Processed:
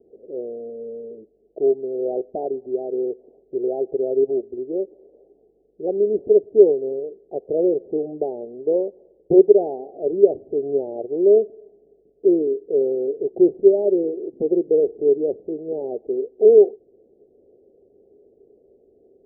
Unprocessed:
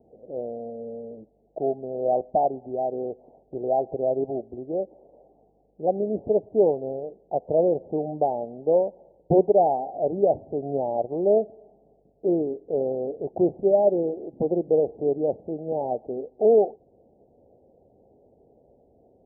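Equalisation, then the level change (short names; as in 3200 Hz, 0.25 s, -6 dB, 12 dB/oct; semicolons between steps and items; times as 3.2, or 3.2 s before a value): synth low-pass 400 Hz, resonance Q 4.9; bell 120 Hz -6.5 dB 2.2 oct; -2.5 dB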